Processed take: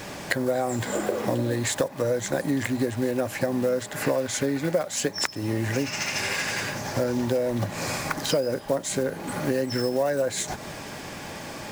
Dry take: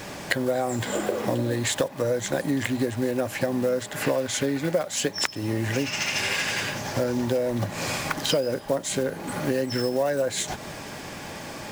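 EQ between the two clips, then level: dynamic EQ 3100 Hz, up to -6 dB, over -44 dBFS, Q 2.4; 0.0 dB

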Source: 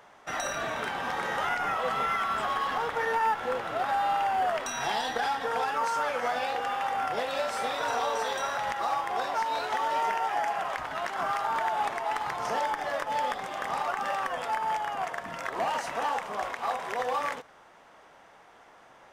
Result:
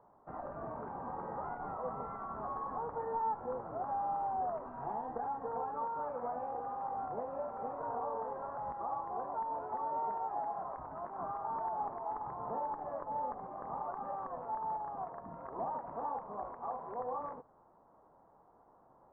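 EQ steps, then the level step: ladder low-pass 1200 Hz, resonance 50%; air absorption 200 m; tilt shelf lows +9 dB, about 710 Hz; -2.5 dB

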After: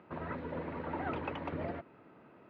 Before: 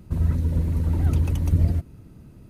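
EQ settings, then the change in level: BPF 680–2500 Hz; air absorption 370 m; +8.0 dB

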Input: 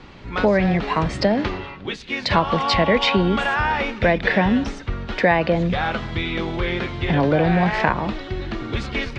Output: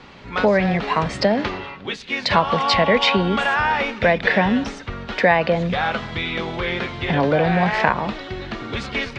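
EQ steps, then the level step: low shelf 110 Hz -11.5 dB; bell 330 Hz -7 dB 0.24 oct; +2.0 dB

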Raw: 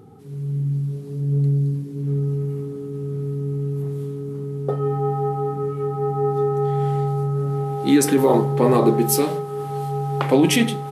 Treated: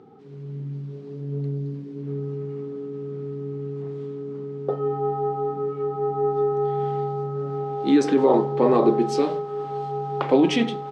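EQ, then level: dynamic EQ 2000 Hz, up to -5 dB, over -41 dBFS, Q 1.3; BPF 240–6400 Hz; air absorption 130 m; 0.0 dB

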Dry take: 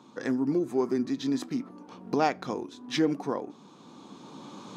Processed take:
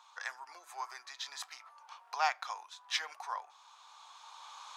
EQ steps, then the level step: steep high-pass 830 Hz 36 dB/oct; 0.0 dB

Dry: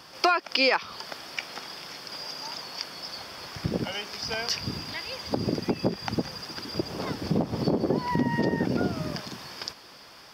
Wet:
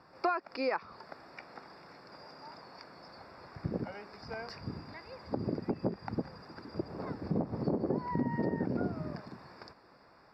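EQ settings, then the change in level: running mean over 14 samples; -6.5 dB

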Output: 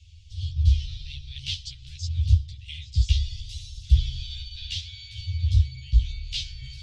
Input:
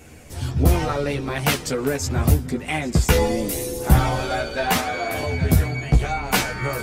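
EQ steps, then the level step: Chebyshev band-stop 100–3200 Hz, order 4; LPF 4600 Hz 24 dB/oct; 0.0 dB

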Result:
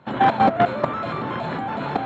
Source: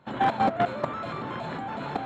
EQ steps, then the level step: HPF 58 Hz; air absorption 79 m; +7.0 dB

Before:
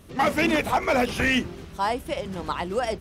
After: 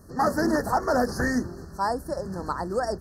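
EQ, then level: Chebyshev band-stop 1800–4300 Hz, order 5; 0.0 dB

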